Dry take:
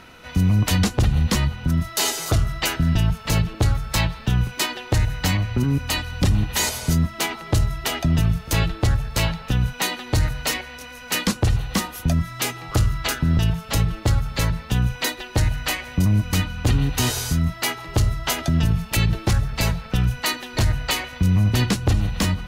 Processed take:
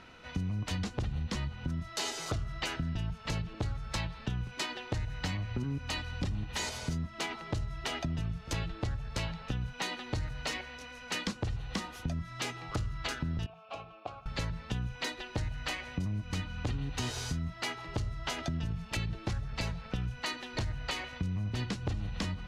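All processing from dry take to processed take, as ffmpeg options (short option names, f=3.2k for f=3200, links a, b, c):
-filter_complex "[0:a]asettb=1/sr,asplit=3[a][b][c];[a]atrim=end=13.464[d];[b]atrim=start=13.46:end=14.26,asetpts=PTS-STARTPTS,afade=t=in:d=0.004:c=qsin,afade=t=out:st=0.796:d=0.004:c=qsin,asplit=3[e][f][g];[e]bandpass=f=730:t=q:w=8,volume=0dB[h];[f]bandpass=f=1.09k:t=q:w=8,volume=-6dB[i];[g]bandpass=f=2.44k:t=q:w=8,volume=-9dB[j];[h][i][j]amix=inputs=3:normalize=0,acontrast=27[k];[c]atrim=start=14.256[l];[d][k]acrossfade=d=0.004:c1=hsin:c2=qsin[m];[m][l]acrossfade=d=0.004:c1=qsin:c2=hsin,lowpass=6.2k,acompressor=threshold=-23dB:ratio=6,volume=-8dB"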